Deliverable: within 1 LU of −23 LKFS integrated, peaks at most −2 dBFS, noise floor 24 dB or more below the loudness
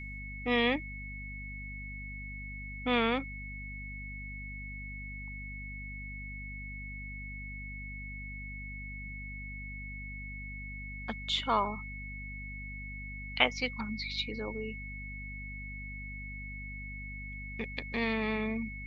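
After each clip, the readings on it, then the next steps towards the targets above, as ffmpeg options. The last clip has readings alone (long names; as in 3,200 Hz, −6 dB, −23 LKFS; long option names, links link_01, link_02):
mains hum 50 Hz; hum harmonics up to 250 Hz; level of the hum −41 dBFS; interfering tone 2,200 Hz; level of the tone −43 dBFS; integrated loudness −36.5 LKFS; sample peak −8.0 dBFS; target loudness −23.0 LKFS
→ -af "bandreject=frequency=50:width_type=h:width=6,bandreject=frequency=100:width_type=h:width=6,bandreject=frequency=150:width_type=h:width=6,bandreject=frequency=200:width_type=h:width=6,bandreject=frequency=250:width_type=h:width=6"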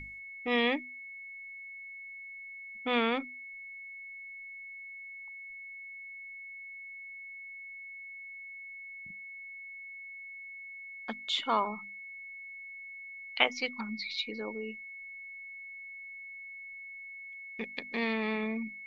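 mains hum none found; interfering tone 2,200 Hz; level of the tone −43 dBFS
→ -af "bandreject=frequency=2200:width=30"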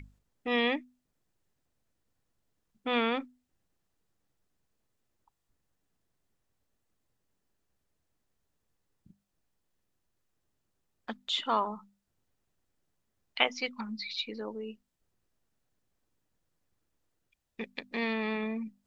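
interfering tone none found; integrated loudness −32.5 LKFS; sample peak −7.5 dBFS; target loudness −23.0 LKFS
→ -af "volume=9.5dB,alimiter=limit=-2dB:level=0:latency=1"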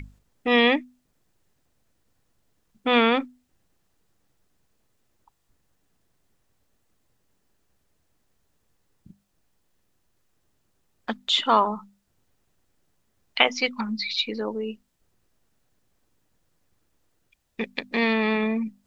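integrated loudness −23.5 LKFS; sample peak −2.0 dBFS; background noise floor −71 dBFS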